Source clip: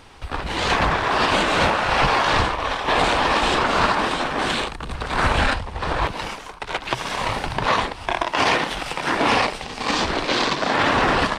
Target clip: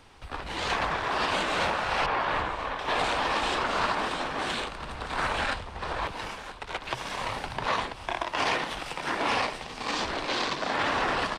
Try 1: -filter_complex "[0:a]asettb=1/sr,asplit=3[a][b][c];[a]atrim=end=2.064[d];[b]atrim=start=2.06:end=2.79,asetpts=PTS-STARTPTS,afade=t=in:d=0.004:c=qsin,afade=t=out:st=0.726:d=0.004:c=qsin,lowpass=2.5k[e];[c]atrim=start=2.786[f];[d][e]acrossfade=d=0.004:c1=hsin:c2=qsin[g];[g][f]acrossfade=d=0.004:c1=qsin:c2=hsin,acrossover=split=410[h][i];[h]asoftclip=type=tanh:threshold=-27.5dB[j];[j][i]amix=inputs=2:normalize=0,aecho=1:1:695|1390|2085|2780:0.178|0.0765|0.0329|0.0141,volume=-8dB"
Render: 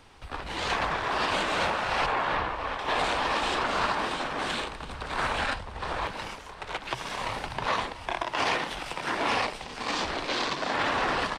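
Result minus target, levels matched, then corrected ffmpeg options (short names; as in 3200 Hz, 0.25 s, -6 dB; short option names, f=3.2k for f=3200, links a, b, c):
echo 0.293 s early
-filter_complex "[0:a]asettb=1/sr,asplit=3[a][b][c];[a]atrim=end=2.064[d];[b]atrim=start=2.06:end=2.79,asetpts=PTS-STARTPTS,afade=t=in:d=0.004:c=qsin,afade=t=out:st=0.726:d=0.004:c=qsin,lowpass=2.5k[e];[c]atrim=start=2.786[f];[d][e]acrossfade=d=0.004:c1=hsin:c2=qsin[g];[g][f]acrossfade=d=0.004:c1=qsin:c2=hsin,acrossover=split=410[h][i];[h]asoftclip=type=tanh:threshold=-27.5dB[j];[j][i]amix=inputs=2:normalize=0,aecho=1:1:988|1976|2964|3952:0.178|0.0765|0.0329|0.0141,volume=-8dB"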